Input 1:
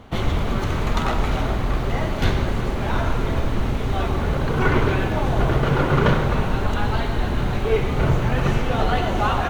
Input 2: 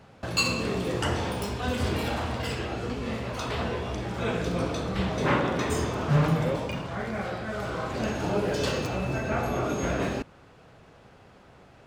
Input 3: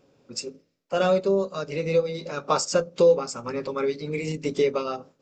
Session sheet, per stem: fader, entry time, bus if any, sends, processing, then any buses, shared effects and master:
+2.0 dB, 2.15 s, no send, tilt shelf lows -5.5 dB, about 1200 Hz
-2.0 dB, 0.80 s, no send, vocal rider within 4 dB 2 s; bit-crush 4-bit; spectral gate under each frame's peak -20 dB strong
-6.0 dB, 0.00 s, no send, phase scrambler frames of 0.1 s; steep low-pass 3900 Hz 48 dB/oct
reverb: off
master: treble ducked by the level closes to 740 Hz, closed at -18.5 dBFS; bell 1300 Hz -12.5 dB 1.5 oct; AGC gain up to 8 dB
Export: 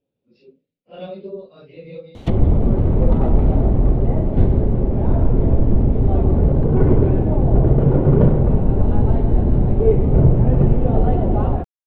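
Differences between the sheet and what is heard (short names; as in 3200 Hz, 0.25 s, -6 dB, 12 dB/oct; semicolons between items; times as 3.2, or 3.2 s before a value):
stem 1: missing tilt shelf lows -5.5 dB, about 1200 Hz; stem 2: muted; stem 3 -6.0 dB -> -16.0 dB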